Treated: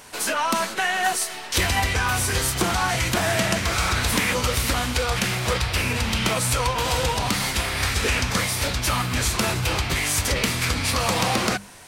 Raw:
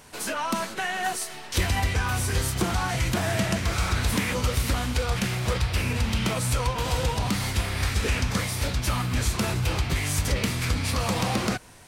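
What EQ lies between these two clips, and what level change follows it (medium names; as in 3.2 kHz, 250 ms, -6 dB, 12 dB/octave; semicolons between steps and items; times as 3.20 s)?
bass shelf 360 Hz -7 dB; hum notches 50/100/150/200 Hz; +6.5 dB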